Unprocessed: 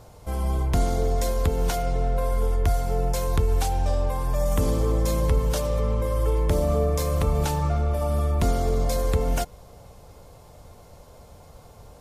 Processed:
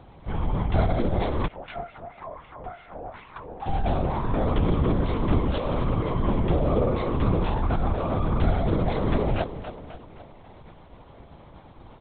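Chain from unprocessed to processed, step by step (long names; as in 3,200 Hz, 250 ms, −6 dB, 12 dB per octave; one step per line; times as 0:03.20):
parametric band 500 Hz −7.5 dB 0.31 octaves
repeating echo 266 ms, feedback 51%, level −11 dB
0:01.46–0:03.66: LFO wah 5.5 Hz → 1.6 Hz 620–2,500 Hz, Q 2.5
linear-prediction vocoder at 8 kHz whisper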